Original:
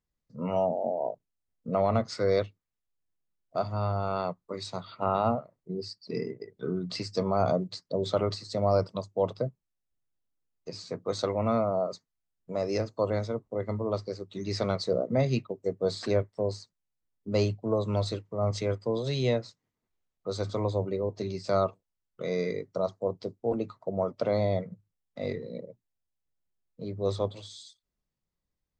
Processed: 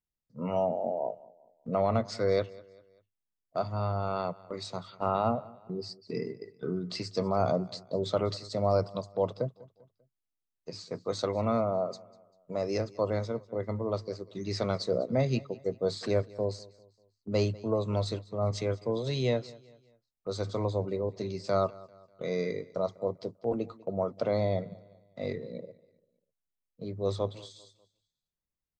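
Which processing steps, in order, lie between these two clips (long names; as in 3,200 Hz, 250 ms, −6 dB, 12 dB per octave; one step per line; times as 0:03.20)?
noise gate −45 dBFS, range −7 dB
repeating echo 197 ms, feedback 41%, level −21.5 dB
level −1.5 dB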